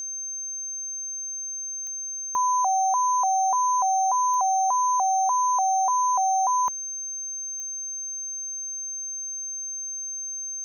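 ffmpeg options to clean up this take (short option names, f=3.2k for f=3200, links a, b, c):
-af "adeclick=t=4,bandreject=f=6.3k:w=30"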